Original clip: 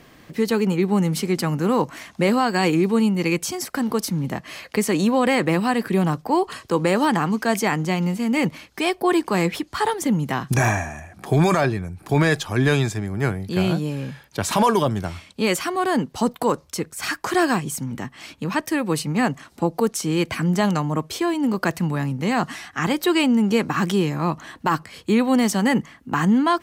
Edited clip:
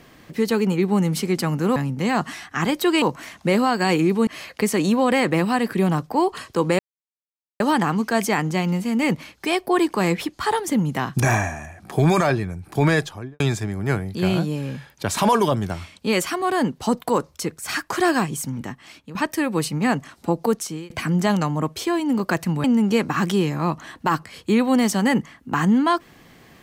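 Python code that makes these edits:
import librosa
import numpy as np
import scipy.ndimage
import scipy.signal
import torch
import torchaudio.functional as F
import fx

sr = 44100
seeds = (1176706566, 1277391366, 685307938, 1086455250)

y = fx.studio_fade_out(x, sr, start_s=12.25, length_s=0.49)
y = fx.edit(y, sr, fx.cut(start_s=3.01, length_s=1.41),
    fx.insert_silence(at_s=6.94, length_s=0.81),
    fx.fade_out_to(start_s=17.9, length_s=0.59, floor_db=-12.5),
    fx.fade_out_span(start_s=19.88, length_s=0.36),
    fx.move(start_s=21.98, length_s=1.26, to_s=1.76), tone=tone)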